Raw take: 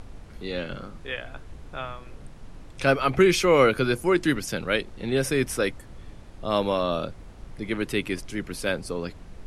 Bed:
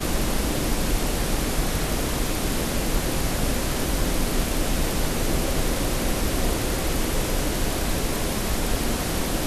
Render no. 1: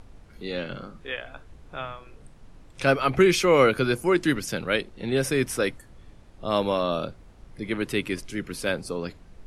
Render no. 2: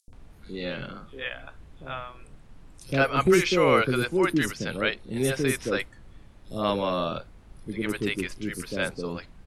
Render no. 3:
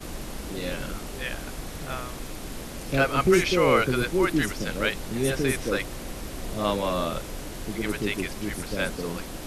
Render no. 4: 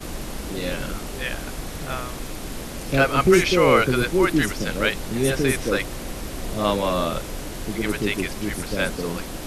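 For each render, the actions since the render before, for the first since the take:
noise reduction from a noise print 6 dB
three-band delay without the direct sound highs, lows, mids 80/130 ms, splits 520/5,900 Hz
mix in bed −12 dB
level +4 dB

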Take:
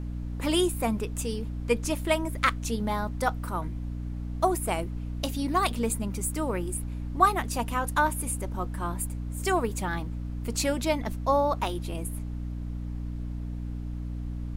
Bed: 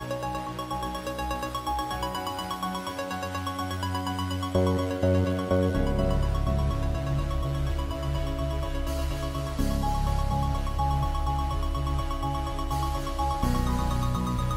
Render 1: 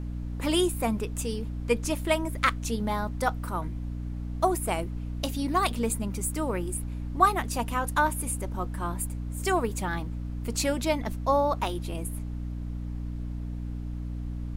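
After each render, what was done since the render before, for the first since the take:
no processing that can be heard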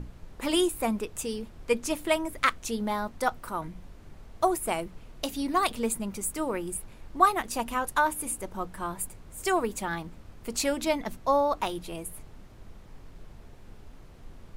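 mains-hum notches 60/120/180/240/300 Hz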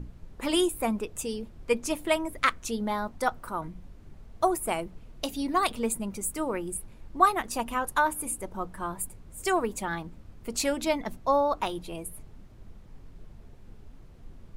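broadband denoise 6 dB, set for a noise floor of −49 dBFS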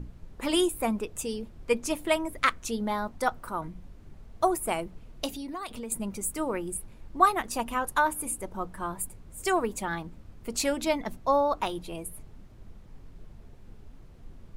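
0:05.32–0:05.92: downward compressor 4 to 1, threshold −35 dBFS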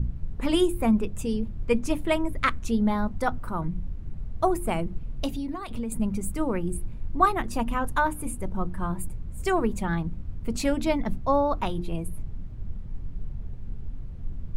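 bass and treble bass +15 dB, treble −6 dB
mains-hum notches 50/100/150/200/250/300/350 Hz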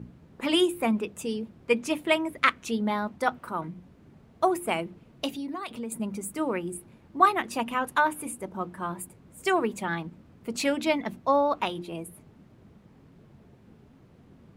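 high-pass filter 260 Hz 12 dB per octave
dynamic equaliser 2,700 Hz, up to +6 dB, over −46 dBFS, Q 1.1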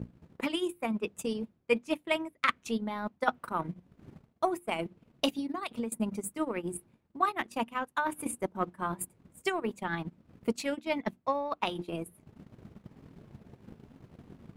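reversed playback
downward compressor 8 to 1, threshold −33 dBFS, peak gain reduction 19.5 dB
reversed playback
transient designer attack +11 dB, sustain −12 dB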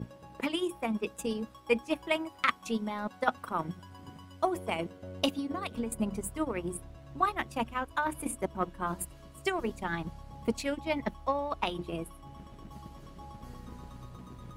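mix in bed −21 dB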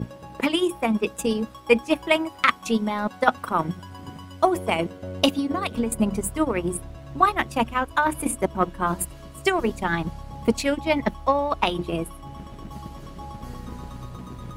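level +9.5 dB
brickwall limiter −3 dBFS, peak gain reduction 1.5 dB

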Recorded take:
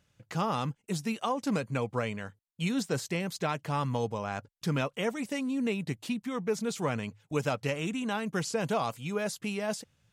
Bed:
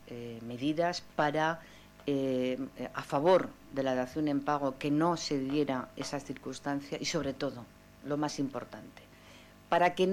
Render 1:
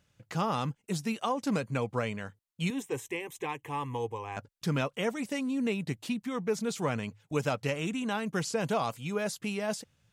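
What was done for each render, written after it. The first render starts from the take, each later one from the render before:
0:02.70–0:04.37: phaser with its sweep stopped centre 940 Hz, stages 8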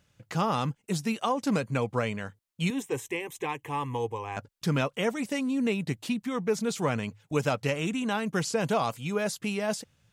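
level +3 dB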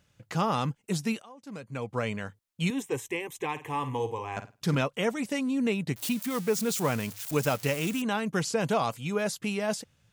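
0:01.22–0:02.11: fade in quadratic, from −23 dB
0:03.51–0:04.75: flutter between parallel walls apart 9 metres, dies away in 0.28 s
0:05.96–0:08.02: spike at every zero crossing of −28 dBFS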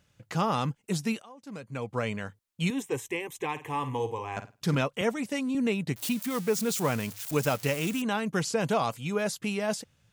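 0:05.01–0:05.55: multiband upward and downward expander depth 40%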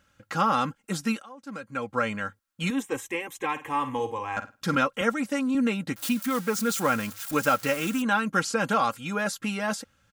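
parametric band 1,400 Hz +11 dB 0.52 octaves
comb filter 3.7 ms, depth 58%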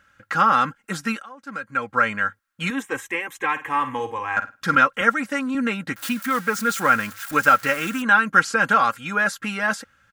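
parametric band 1,600 Hz +11.5 dB 1.1 octaves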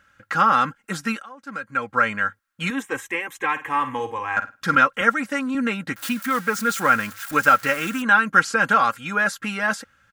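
no processing that can be heard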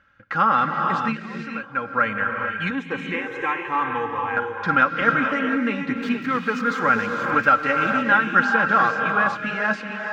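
high-frequency loss of the air 220 metres
reverb whose tail is shaped and stops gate 490 ms rising, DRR 3 dB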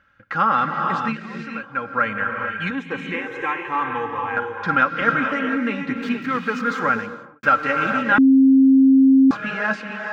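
0:06.80–0:07.43: fade out and dull
0:08.18–0:09.31: beep over 267 Hz −9 dBFS

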